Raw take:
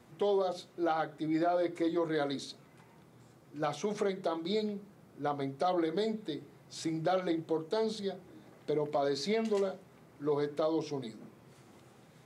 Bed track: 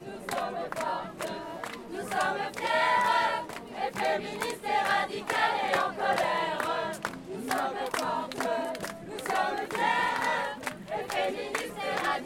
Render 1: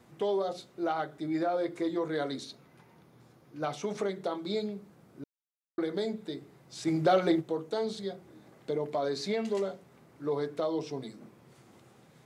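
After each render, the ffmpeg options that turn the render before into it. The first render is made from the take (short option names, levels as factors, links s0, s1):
-filter_complex "[0:a]asettb=1/sr,asplit=3[s0][s1][s2];[s0]atrim=end=2.444[s3];[s1]atrim=start=2.44:end=3.73,asetpts=PTS-STARTPTS,afade=t=in:d=0.004:c=qsin,afade=t=out:st=1.286:d=0.004:c=qsin,equalizer=f=7800:w=5.5:g=-10.5[s4];[s2]atrim=start=3.726[s5];[s3][s4]acrossfade=d=0.004:c1=hsin:c2=qsin[s6];[s6][s5]acrossfade=d=0.004:c1=qsin:c2=hsin,asplit=3[s7][s8][s9];[s7]afade=t=out:st=6.86:d=0.02[s10];[s8]acontrast=67,afade=t=in:st=6.86:d=0.02,afade=t=out:st=7.4:d=0.02[s11];[s9]afade=t=in:st=7.4:d=0.02[s12];[s10][s11][s12]amix=inputs=3:normalize=0,asplit=3[s13][s14][s15];[s13]atrim=end=5.24,asetpts=PTS-STARTPTS,afade=t=out:st=5.236:d=0.004:c=hsin[s16];[s14]atrim=start=5.24:end=5.78,asetpts=PTS-STARTPTS,volume=0[s17];[s15]atrim=start=5.78,asetpts=PTS-STARTPTS,afade=t=in:d=0.004:c=hsin[s18];[s16][s17][s18]concat=n=3:v=0:a=1"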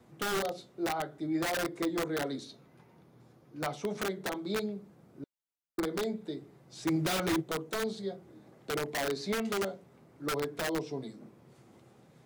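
-filter_complex "[0:a]acrossover=split=330|870[s0][s1][s2];[s1]aeval=exprs='(mod(28.2*val(0)+1,2)-1)/28.2':c=same[s3];[s2]flanger=delay=4.5:depth=9.1:regen=62:speed=0.58:shape=triangular[s4];[s0][s3][s4]amix=inputs=3:normalize=0"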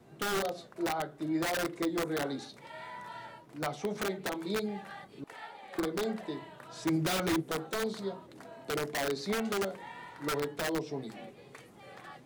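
-filter_complex "[1:a]volume=0.1[s0];[0:a][s0]amix=inputs=2:normalize=0"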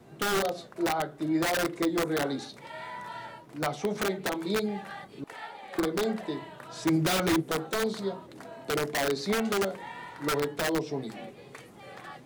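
-af "volume=1.68"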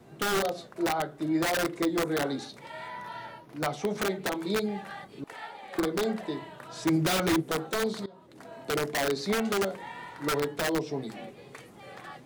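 -filter_complex "[0:a]asettb=1/sr,asplit=3[s0][s1][s2];[s0]atrim=end=2.884[s3];[s1]atrim=start=2.88:end=3.57,asetpts=PTS-STARTPTS,afade=t=in:d=0.004:c=qsin,afade=t=out:st=0.686:d=0.004:c=qsin,equalizer=f=7800:t=o:w=0.27:g=-11[s4];[s2]atrim=start=3.566[s5];[s3][s4]acrossfade=d=0.004:c1=hsin:c2=qsin[s6];[s6][s5]acrossfade=d=0.004:c1=qsin:c2=hsin,asplit=2[s7][s8];[s7]atrim=end=8.06,asetpts=PTS-STARTPTS,afade=t=out:st=8.056:d=0.004:c=hsin:silence=0.0707946[s9];[s8]atrim=start=8.06,asetpts=PTS-STARTPTS,afade=t=in:d=0.51:silence=0.0707946[s10];[s9][s10]concat=n=2:v=0:a=1"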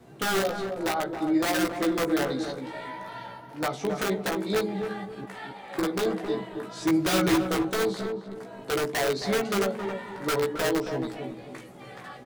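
-filter_complex "[0:a]asplit=2[s0][s1];[s1]adelay=16,volume=0.631[s2];[s0][s2]amix=inputs=2:normalize=0,asplit=2[s3][s4];[s4]adelay=270,lowpass=f=1000:p=1,volume=0.562,asplit=2[s5][s6];[s6]adelay=270,lowpass=f=1000:p=1,volume=0.36,asplit=2[s7][s8];[s8]adelay=270,lowpass=f=1000:p=1,volume=0.36,asplit=2[s9][s10];[s10]adelay=270,lowpass=f=1000:p=1,volume=0.36[s11];[s5][s7][s9][s11]amix=inputs=4:normalize=0[s12];[s3][s12]amix=inputs=2:normalize=0"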